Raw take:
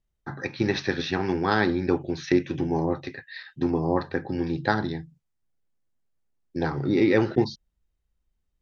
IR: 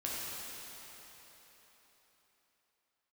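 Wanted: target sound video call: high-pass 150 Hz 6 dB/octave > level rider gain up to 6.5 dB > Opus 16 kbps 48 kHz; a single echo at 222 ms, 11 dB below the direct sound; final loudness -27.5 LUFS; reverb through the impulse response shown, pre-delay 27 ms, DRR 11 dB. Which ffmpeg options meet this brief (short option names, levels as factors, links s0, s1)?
-filter_complex "[0:a]aecho=1:1:222:0.282,asplit=2[s0][s1];[1:a]atrim=start_sample=2205,adelay=27[s2];[s1][s2]afir=irnorm=-1:irlink=0,volume=0.178[s3];[s0][s3]amix=inputs=2:normalize=0,highpass=f=150:p=1,dynaudnorm=m=2.11,volume=0.944" -ar 48000 -c:a libopus -b:a 16k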